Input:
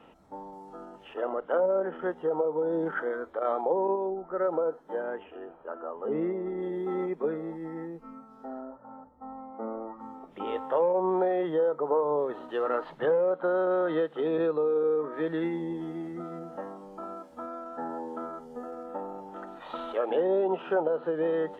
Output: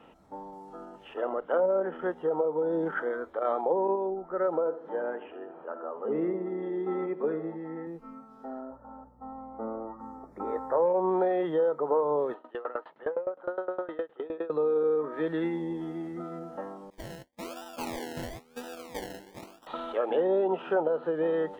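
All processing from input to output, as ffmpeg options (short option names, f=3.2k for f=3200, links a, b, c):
-filter_complex "[0:a]asettb=1/sr,asplit=3[a][b][c];[a]atrim=end=4.594[d];[b]atrim=start=4.59:end=7.87,asetpts=PTS-STARTPTS,afade=t=in:d=0.004:c=qsin,afade=t=out:st=3.276:d=0.004:c=qsin,acompressor=mode=upward:threshold=-40dB:ratio=2.5:attack=3.2:release=140:knee=2.83:detection=peak,highpass=140,lowpass=3.1k,asplit=2[e][f];[f]adelay=75,lowpass=f=1.1k:p=1,volume=-10.5dB,asplit=2[g][h];[h]adelay=75,lowpass=f=1.1k:p=1,volume=0.49,asplit=2[i][j];[j]adelay=75,lowpass=f=1.1k:p=1,volume=0.49,asplit=2[k][l];[l]adelay=75,lowpass=f=1.1k:p=1,volume=0.49,asplit=2[m][n];[n]adelay=75,lowpass=f=1.1k:p=1,volume=0.49[o];[e][g][i][k][m][o]amix=inputs=6:normalize=0,atrim=end_sample=144648[p];[c]atrim=start=7.866[q];[d][p]acrossfade=d=0.004:c1=hsin:c2=qsin[r];[r][q]acrossfade=d=0.004:c1=qsin:c2=hsin,asettb=1/sr,asplit=3[s][t][u];[s]atrim=end=8.704[v];[t]atrim=start=8.7:end=10.86,asetpts=PTS-STARTPTS,afade=t=in:d=0.004:c=qsin,afade=t=out:st=2.156:d=0.004:c=qsin,asuperstop=centerf=3000:order=4:qfactor=1,aeval=exprs='val(0)+0.001*(sin(2*PI*60*n/s)+sin(2*PI*2*60*n/s)/2+sin(2*PI*3*60*n/s)/3+sin(2*PI*4*60*n/s)/4+sin(2*PI*5*60*n/s)/5)':c=same[w];[u]atrim=start=10.856[x];[v][w]acrossfade=d=0.004:c1=hsin:c2=qsin[y];[y][x]acrossfade=d=0.004:c1=qsin:c2=hsin,asettb=1/sr,asplit=3[z][aa][ab];[z]atrim=end=12.344[ac];[aa]atrim=start=12.34:end=14.5,asetpts=PTS-STARTPTS,afade=t=in:d=0.004:c=qsin,afade=t=out:st=2.156:d=0.004:c=qsin,highpass=340,lowpass=2.7k,aeval=exprs='val(0)*pow(10,-21*if(lt(mod(9.7*n/s,1),2*abs(9.7)/1000),1-mod(9.7*n/s,1)/(2*abs(9.7)/1000),(mod(9.7*n/s,1)-2*abs(9.7)/1000)/(1-2*abs(9.7)/1000))/20)':c=same[ad];[ab]atrim=start=14.496[ae];[ac][ad]acrossfade=d=0.004:c1=hsin:c2=qsin[af];[af][ae]acrossfade=d=0.004:c1=qsin:c2=hsin,asettb=1/sr,asplit=3[ag][ah][ai];[ag]atrim=end=16.904[aj];[ah]atrim=start=16.9:end=19.67,asetpts=PTS-STARTPTS,afade=t=in:d=0.004:c=qsin,afade=t=out:st=2.766:d=0.004:c=qsin,agate=range=-33dB:threshold=-37dB:ratio=3:release=100:detection=peak,acrusher=samples=29:mix=1:aa=0.000001:lfo=1:lforange=17.4:lforate=1[ak];[ai]atrim=start=19.666[al];[aj][ak]acrossfade=d=0.004:c1=hsin:c2=qsin[am];[am][al]acrossfade=d=0.004:c1=qsin:c2=hsin"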